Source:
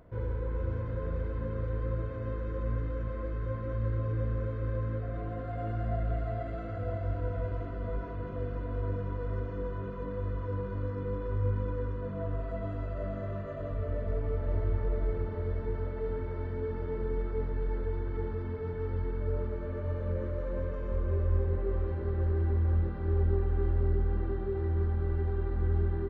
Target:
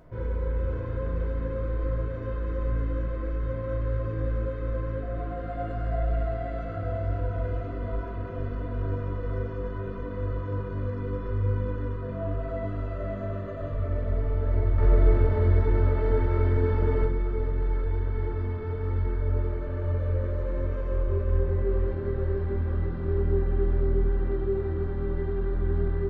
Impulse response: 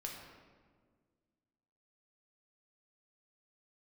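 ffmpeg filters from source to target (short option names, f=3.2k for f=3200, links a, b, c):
-filter_complex "[0:a]asettb=1/sr,asplit=3[a][b][c];[a]atrim=end=14.784[d];[b]atrim=start=14.78:end=17.05,asetpts=PTS-STARTPTS,afade=t=in:d=0.004:c=qsin,afade=t=out:st=2.266:d=0.004:c=qsin,acontrast=58[e];[c]atrim=start=17.046[f];[d][e]acrossfade=d=0.004:c1=hsin:c2=qsin[g];[g][f]acrossfade=d=0.004:c1=qsin:c2=hsin[h];[1:a]atrim=start_sample=2205,atrim=end_sample=4410[i];[h][i]afir=irnorm=-1:irlink=0,volume=7dB"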